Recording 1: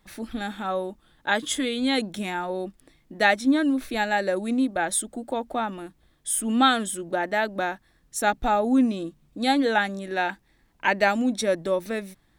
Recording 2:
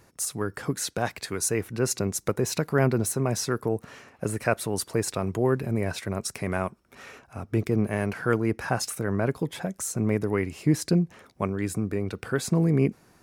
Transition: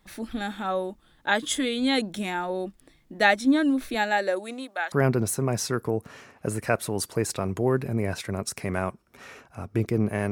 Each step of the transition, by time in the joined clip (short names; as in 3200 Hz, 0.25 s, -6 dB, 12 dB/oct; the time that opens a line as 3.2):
recording 1
3.94–4.92 HPF 150 Hz -> 1200 Hz
4.92 switch to recording 2 from 2.7 s